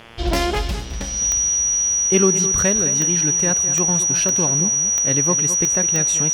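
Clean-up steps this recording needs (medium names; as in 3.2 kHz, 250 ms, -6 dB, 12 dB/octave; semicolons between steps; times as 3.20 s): de-click; de-hum 115.3 Hz, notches 30; band-stop 5.8 kHz, Q 30; inverse comb 212 ms -12 dB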